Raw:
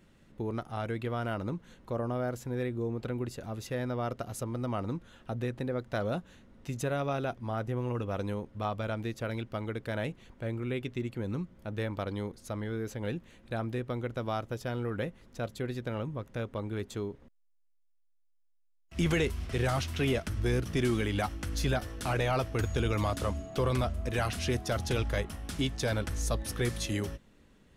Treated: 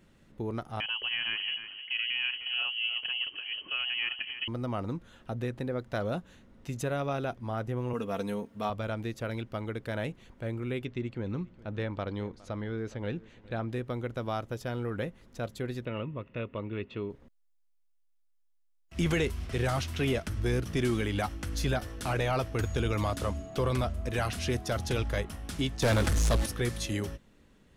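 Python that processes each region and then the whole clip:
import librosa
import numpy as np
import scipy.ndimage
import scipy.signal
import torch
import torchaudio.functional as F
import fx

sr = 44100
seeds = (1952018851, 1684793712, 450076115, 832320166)

y = fx.chain(x, sr, fx.echo_feedback(ms=307, feedback_pct=17, wet_db=-10.5),
    fx.freq_invert(carrier_hz=3100), at=(0.8, 4.48))
y = fx.chain(y, sr, fx.highpass(hz=110.0, slope=12),
    fx.high_shelf(hz=7000.0, db=8.5),
    fx.comb(ms=4.4, depth=0.57), at=(7.93, 8.7))
y = fx.chain(y, sr, fx.lowpass(hz=4800.0, slope=12),
    fx.echo_single(ms=412, db=-21.0), at=(10.85, 13.72))
y = fx.chain(y, sr, fx.lowpass(hz=3400.0, slope=24),
    fx.peak_eq(hz=2600.0, db=12.5, octaves=0.35),
    fx.notch_comb(f0_hz=790.0), at=(15.85, 17.1))
y = fx.chain(y, sr, fx.delta_mod(bps=64000, step_db=-42.5),
    fx.leveller(passes=3), at=(25.82, 26.46))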